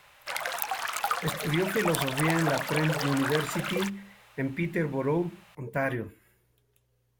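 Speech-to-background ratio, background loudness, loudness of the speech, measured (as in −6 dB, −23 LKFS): 1.5 dB, −31.5 LKFS, −30.0 LKFS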